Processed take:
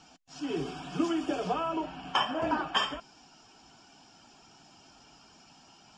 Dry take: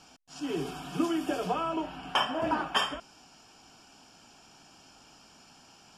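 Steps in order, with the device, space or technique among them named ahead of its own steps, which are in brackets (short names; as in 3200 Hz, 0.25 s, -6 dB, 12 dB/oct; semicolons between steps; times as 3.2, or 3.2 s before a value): clip after many re-uploads (LPF 7400 Hz 24 dB/oct; bin magnitudes rounded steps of 15 dB)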